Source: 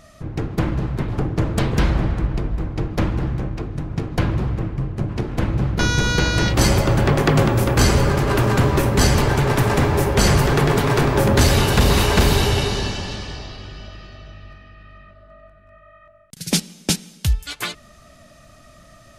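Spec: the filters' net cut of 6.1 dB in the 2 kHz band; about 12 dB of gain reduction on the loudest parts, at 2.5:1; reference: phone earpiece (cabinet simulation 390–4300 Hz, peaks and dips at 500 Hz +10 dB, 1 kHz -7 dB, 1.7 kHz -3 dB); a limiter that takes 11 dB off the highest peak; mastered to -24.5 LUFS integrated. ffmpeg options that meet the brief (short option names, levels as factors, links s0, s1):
-af "equalizer=f=2000:t=o:g=-6,acompressor=threshold=0.0316:ratio=2.5,alimiter=limit=0.0708:level=0:latency=1,highpass=390,equalizer=f=500:t=q:w=4:g=10,equalizer=f=1000:t=q:w=4:g=-7,equalizer=f=1700:t=q:w=4:g=-3,lowpass=f=4300:w=0.5412,lowpass=f=4300:w=1.3066,volume=4.22"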